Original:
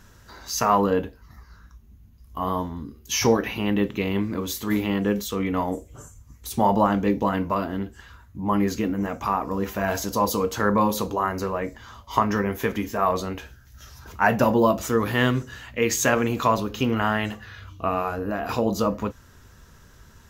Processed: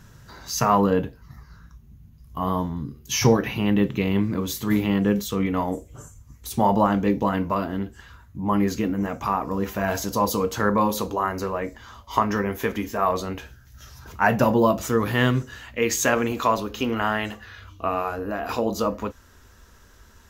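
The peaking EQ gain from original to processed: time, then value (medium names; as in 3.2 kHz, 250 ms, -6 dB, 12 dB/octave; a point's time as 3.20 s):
peaking EQ 140 Hz 0.7 oct
+11 dB
from 5.46 s +3.5 dB
from 10.69 s -3.5 dB
from 13.29 s +3 dB
from 15.46 s -5 dB
from 16.32 s -11.5 dB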